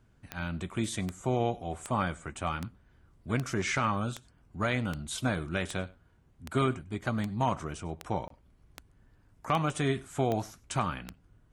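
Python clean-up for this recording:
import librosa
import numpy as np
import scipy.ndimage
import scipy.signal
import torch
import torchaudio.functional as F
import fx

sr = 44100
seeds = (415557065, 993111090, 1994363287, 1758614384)

y = fx.fix_declick_ar(x, sr, threshold=10.0)
y = fx.fix_interpolate(y, sr, at_s=(8.28,), length_ms=23.0)
y = fx.fix_echo_inverse(y, sr, delay_ms=99, level_db=-22.5)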